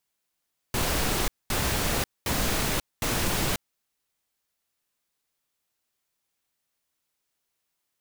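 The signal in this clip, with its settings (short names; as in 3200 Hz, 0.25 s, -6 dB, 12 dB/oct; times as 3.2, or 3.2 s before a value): noise bursts pink, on 0.54 s, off 0.22 s, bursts 4, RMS -26 dBFS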